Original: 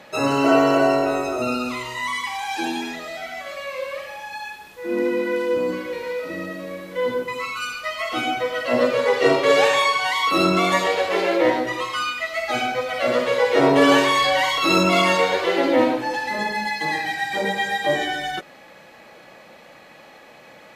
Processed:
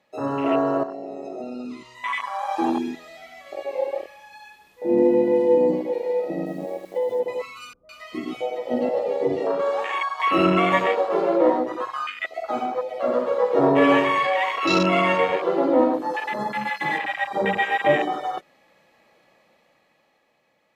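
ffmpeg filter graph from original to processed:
ffmpeg -i in.wav -filter_complex "[0:a]asettb=1/sr,asplit=3[link_01][link_02][link_03];[link_01]atrim=end=0.834[link_04];[link_02]atrim=start=0.83:end=1.95,asetpts=PTS-STARTPTS,afade=type=in:duration=0.004:curve=qsin,afade=type=out:start_time=1.116:duration=0.004:curve=qsin,lowpass=9600,acompressor=threshold=-24dB:ratio=6:attack=3.2:release=140:knee=1:detection=peak,equalizer=frequency=5000:width_type=o:width=0.7:gain=5[link_05];[link_03]atrim=start=1.946[link_06];[link_04][link_05]acrossfade=duration=0.004:curve1=hsin:curve2=qsin[link_07];[link_07][link_06]acrossfade=duration=0.004:curve1=qsin:curve2=hsin,asettb=1/sr,asplit=3[link_08][link_09][link_10];[link_08]atrim=end=6.464[link_11];[link_09]atrim=start=6.46:end=7.2,asetpts=PTS-STARTPTS,afade=type=in:duration=0.004:curve=qsin,afade=type=out:start_time=0.736:duration=0.004:curve=qsin,bandreject=frequency=50:width_type=h:width=6,bandreject=frequency=100:width_type=h:width=6,bandreject=frequency=150:width_type=h:width=6,bandreject=frequency=200:width_type=h:width=6,bandreject=frequency=250:width_type=h:width=6,bandreject=frequency=300:width_type=h:width=6,bandreject=frequency=350:width_type=h:width=6,bandreject=frequency=400:width_type=h:width=6,bandreject=frequency=450:width_type=h:width=6,acompressor=threshold=-24dB:ratio=12:attack=3.2:release=140:knee=1:detection=peak,acrusher=bits=8:dc=4:mix=0:aa=0.000001[link_12];[link_10]atrim=start=7.196[link_13];[link_11][link_12]acrossfade=duration=0.004:curve1=hsin:curve2=qsin[link_14];[link_14][link_13]acrossfade=duration=0.004:curve1=qsin:curve2=hsin,asettb=1/sr,asplit=3[link_15][link_16][link_17];[link_15]atrim=end=7.734[link_18];[link_16]atrim=start=7.73:end=10.2,asetpts=PTS-STARTPTS,afade=type=in:duration=0.004:curve=qsin,afade=type=out:start_time=2.466:duration=0.004:curve=qsin,acompressor=threshold=-27dB:ratio=1.5:attack=3.2:release=140:knee=1:detection=peak,acrossover=split=550[link_19][link_20];[link_20]adelay=160[link_21];[link_19][link_21]amix=inputs=2:normalize=0,atrim=end_sample=108927[link_22];[link_17]atrim=start=10.196[link_23];[link_18][link_22]acrossfade=duration=0.004:curve1=hsin:curve2=qsin[link_24];[link_24][link_23]acrossfade=duration=0.004:curve1=qsin:curve2=hsin,asettb=1/sr,asplit=3[link_25][link_26][link_27];[link_25]atrim=end=15.934[link_28];[link_26]atrim=start=15.93:end=16.98,asetpts=PTS-STARTPTS,afade=type=in:duration=0.004:curve=qsin,afade=type=out:start_time=1.046:duration=0.004:curve=qsin,aemphasis=mode=production:type=cd,bandreject=frequency=2500:width=12[link_29];[link_27]atrim=start=16.976[link_30];[link_28][link_29]acrossfade=duration=0.004:curve1=hsin:curve2=qsin[link_31];[link_31][link_30]acrossfade=duration=0.004:curve1=qsin:curve2=hsin,afwtdn=0.0794,bandreject=frequency=1500:width=11,dynaudnorm=framelen=250:gausssize=11:maxgain=11.5dB,volume=-5dB" out.wav

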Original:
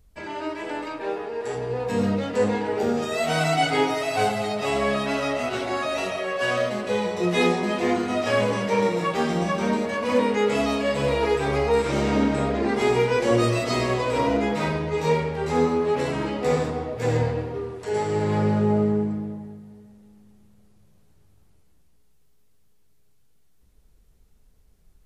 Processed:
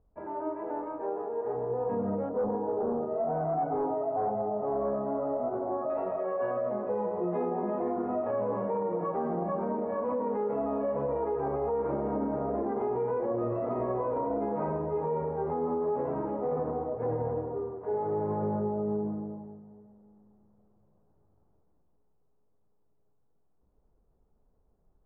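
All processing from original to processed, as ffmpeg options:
ffmpeg -i in.wav -filter_complex "[0:a]asettb=1/sr,asplit=3[link_01][link_02][link_03];[link_01]atrim=end=2.294[link_04];[link_02]atrim=start=2.29:end=5.9,asetpts=PTS-STARTPTS,afade=type=in:duration=0.004:curve=qsin,afade=type=out:start_time=3.606:duration=0.004:curve=qsin,lowpass=1000,asoftclip=type=hard:threshold=-21dB[link_05];[link_03]atrim=start=5.896[link_06];[link_04][link_05]acrossfade=duration=0.004:curve1=hsin:curve2=qsin[link_07];[link_07][link_06]acrossfade=duration=0.004:curve1=qsin:curve2=hsin,lowpass=frequency=1000:width=0.5412,lowpass=frequency=1000:width=1.3066,lowshelf=frequency=240:gain=-12,alimiter=limit=-23dB:level=0:latency=1:release=51" out.wav

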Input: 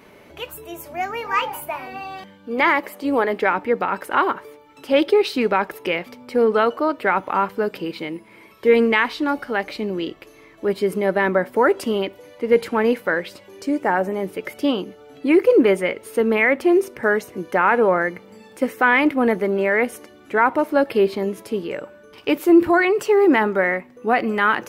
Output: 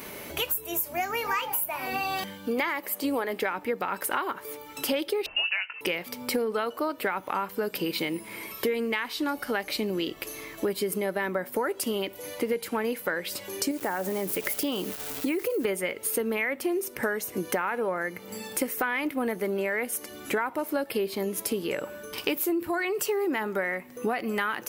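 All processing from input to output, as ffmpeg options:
ffmpeg -i in.wav -filter_complex "[0:a]asettb=1/sr,asplit=3[link_01][link_02][link_03];[link_01]atrim=end=5.264[link_04];[link_02]atrim=start=5.26:end=5.81,asetpts=PTS-STARTPTS,afade=type=in:duration=0.004:curve=qsin,afade=type=out:start_time=0.546:duration=0.004:curve=qsin,lowpass=frequency=2600:width_type=q:width=0.5098,lowpass=frequency=2600:width_type=q:width=0.6013,lowpass=frequency=2600:width_type=q:width=0.9,lowpass=frequency=2600:width_type=q:width=2.563,afreqshift=-3100,asplit=2[link_05][link_06];[link_06]adelay=20,volume=-9dB[link_07];[link_05][link_07]amix=inputs=2:normalize=0,atrim=end_sample=24255[link_08];[link_03]atrim=start=5.806[link_09];[link_04][link_08]acrossfade=duration=0.004:curve1=hsin:curve2=qsin[link_10];[link_10][link_09]acrossfade=duration=0.004:curve1=qsin:curve2=hsin,asettb=1/sr,asplit=3[link_11][link_12][link_13];[link_11]atrim=end=13.714[link_14];[link_12]atrim=start=13.71:end=15.65,asetpts=PTS-STARTPTS,afade=type=in:duration=0.004:curve=qsin,afade=type=out:start_time=1.936:duration=0.004:curve=qsin,acompressor=threshold=-27dB:ratio=2:attack=3.2:release=140:knee=1:detection=peak,aeval=exprs='val(0)*gte(abs(val(0)),0.0075)':channel_layout=same[link_15];[link_13]atrim=start=15.646[link_16];[link_14][link_15]acrossfade=duration=0.004:curve1=hsin:curve2=qsin[link_17];[link_17][link_16]acrossfade=duration=0.004:curve1=qsin:curve2=hsin,aemphasis=mode=production:type=75fm,acompressor=threshold=-31dB:ratio=10,volume=5.5dB" out.wav

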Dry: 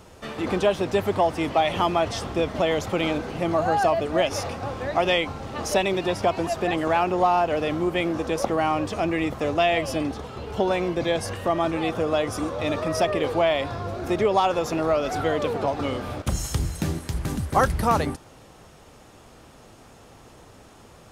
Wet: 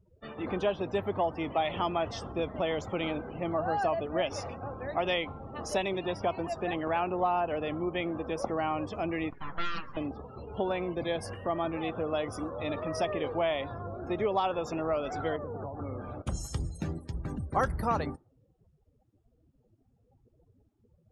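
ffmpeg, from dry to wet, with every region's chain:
ffmpeg -i in.wav -filter_complex "[0:a]asettb=1/sr,asplit=3[link_01][link_02][link_03];[link_01]atrim=end=9.304[link_04];[link_02]atrim=start=9.3:end=9.97,asetpts=PTS-STARTPTS,afade=type=in:duration=0.004:curve=qsin,afade=type=out:start_time=0.666:duration=0.004:curve=qsin,highpass=450,acrossover=split=2900[link_05][link_06];[link_06]acompressor=threshold=-47dB:ratio=4:attack=1:release=60[link_07];[link_05][link_07]amix=inputs=2:normalize=0,aeval=exprs='abs(val(0))':channel_layout=same[link_08];[link_03]atrim=start=9.966[link_09];[link_04][link_08]acrossfade=duration=0.004:curve1=hsin:curve2=qsin[link_10];[link_10][link_09]acrossfade=duration=0.004:curve1=qsin:curve2=hsin,asettb=1/sr,asplit=3[link_11][link_12][link_13];[link_11]atrim=end=15.364[link_14];[link_12]atrim=start=15.36:end=16.01,asetpts=PTS-STARTPTS,afade=type=in:duration=0.004:curve=qsin,afade=type=out:start_time=0.646:duration=0.004:curve=qsin,acrossover=split=160|3000[link_15][link_16][link_17];[link_16]acompressor=threshold=-27dB:ratio=10:attack=3.2:release=140:knee=2.83:detection=peak[link_18];[link_15][link_18][link_17]amix=inputs=3:normalize=0,asuperstop=centerf=3700:order=8:qfactor=0.78,equalizer=frequency=96:width=3.7:gain=5[link_19];[link_13]atrim=start=16.006[link_20];[link_14][link_19]acrossfade=duration=0.004:curve1=hsin:curve2=qsin[link_21];[link_21][link_20]acrossfade=duration=0.004:curve1=qsin:curve2=hsin,afftdn=noise_reduction=32:noise_floor=-38,bandreject=frequency=6200:width=23,volume=-8dB" out.wav

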